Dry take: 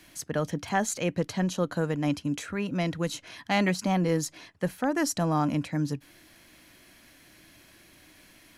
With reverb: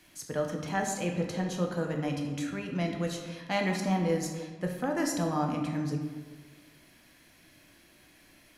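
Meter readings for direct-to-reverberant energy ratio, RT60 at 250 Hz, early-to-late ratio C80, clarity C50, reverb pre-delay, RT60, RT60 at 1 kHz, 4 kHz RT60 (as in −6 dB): 1.5 dB, 1.6 s, 6.5 dB, 5.0 dB, 10 ms, 1.4 s, 1.4 s, 0.85 s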